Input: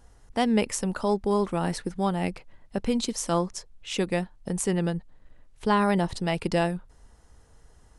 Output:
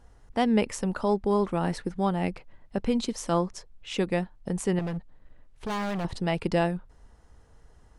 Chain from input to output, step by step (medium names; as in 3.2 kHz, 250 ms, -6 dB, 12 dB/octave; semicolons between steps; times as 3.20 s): treble shelf 5.1 kHz -9.5 dB; 4.79–6.05 s: overload inside the chain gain 28.5 dB